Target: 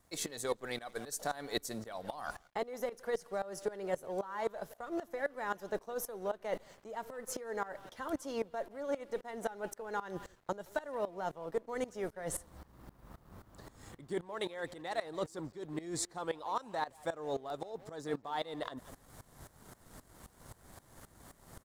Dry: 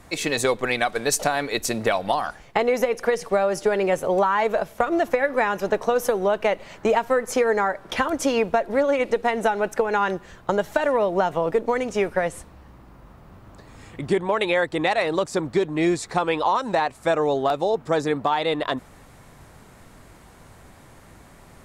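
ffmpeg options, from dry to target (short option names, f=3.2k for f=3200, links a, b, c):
-filter_complex "[0:a]equalizer=f=2.5k:t=o:w=0.37:g=-11.5,areverse,acompressor=threshold=-30dB:ratio=6,areverse,asplit=2[a][b];[b]adelay=170,highpass=300,lowpass=3.4k,asoftclip=type=hard:threshold=-30dB,volume=-15dB[c];[a][c]amix=inputs=2:normalize=0,crystalizer=i=1:c=0,aeval=exprs='sgn(val(0))*max(abs(val(0))-0.0015,0)':c=same,aeval=exprs='val(0)*pow(10,-18*if(lt(mod(-3.8*n/s,1),2*abs(-3.8)/1000),1-mod(-3.8*n/s,1)/(2*abs(-3.8)/1000),(mod(-3.8*n/s,1)-2*abs(-3.8)/1000)/(1-2*abs(-3.8)/1000))/20)':c=same"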